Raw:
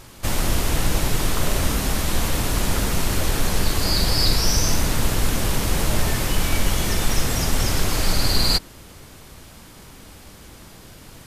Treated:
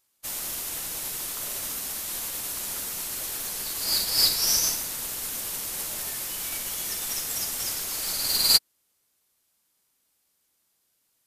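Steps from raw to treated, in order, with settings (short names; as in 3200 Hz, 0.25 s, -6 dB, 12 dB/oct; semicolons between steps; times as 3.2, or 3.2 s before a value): RIAA curve recording; upward expander 2.5:1, over -31 dBFS; gain -4 dB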